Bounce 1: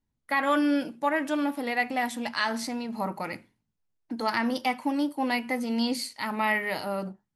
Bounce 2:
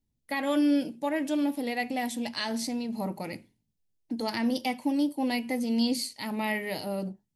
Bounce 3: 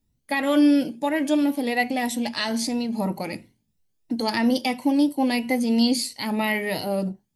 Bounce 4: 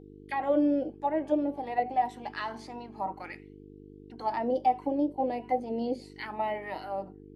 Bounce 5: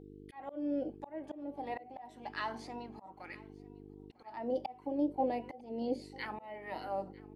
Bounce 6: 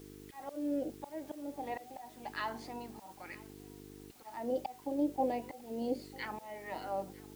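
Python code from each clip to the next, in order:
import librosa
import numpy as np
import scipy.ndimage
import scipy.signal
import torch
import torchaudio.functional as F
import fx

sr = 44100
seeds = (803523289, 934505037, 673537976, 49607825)

y1 = fx.peak_eq(x, sr, hz=1300.0, db=-15.0, octaves=1.3)
y1 = F.gain(torch.from_numpy(y1), 2.0).numpy()
y2 = fx.spec_ripple(y1, sr, per_octave=2.0, drift_hz=3.0, depth_db=7)
y2 = F.gain(torch.from_numpy(y2), 6.0).numpy()
y3 = fx.auto_wah(y2, sr, base_hz=530.0, top_hz=3300.0, q=2.9, full_db=-18.0, direction='down')
y3 = fx.dmg_buzz(y3, sr, base_hz=50.0, harmonics=9, level_db=-51.0, tilt_db=0, odd_only=False)
y3 = fx.small_body(y3, sr, hz=(320.0, 760.0, 3000.0), ring_ms=100, db=9)
y4 = fx.auto_swell(y3, sr, attack_ms=424.0)
y4 = fx.echo_feedback(y4, sr, ms=948, feedback_pct=28, wet_db=-22.5)
y4 = F.gain(torch.from_numpy(y4), -2.5).numpy()
y5 = fx.dmg_noise_colour(y4, sr, seeds[0], colour='white', level_db=-62.0)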